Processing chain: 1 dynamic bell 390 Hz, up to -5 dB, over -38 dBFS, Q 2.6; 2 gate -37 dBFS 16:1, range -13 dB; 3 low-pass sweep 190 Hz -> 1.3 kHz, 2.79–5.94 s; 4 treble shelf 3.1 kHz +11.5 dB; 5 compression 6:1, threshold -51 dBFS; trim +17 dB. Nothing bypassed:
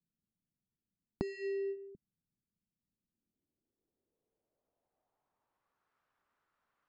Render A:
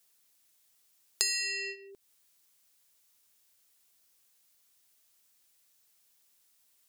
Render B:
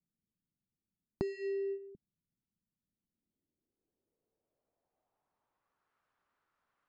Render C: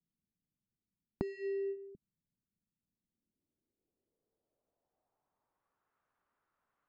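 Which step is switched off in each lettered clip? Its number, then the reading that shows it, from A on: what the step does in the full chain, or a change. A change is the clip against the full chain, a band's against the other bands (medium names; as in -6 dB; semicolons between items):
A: 3, 4 kHz band +29.0 dB; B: 1, loudness change +1.0 LU; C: 4, 2 kHz band -3.5 dB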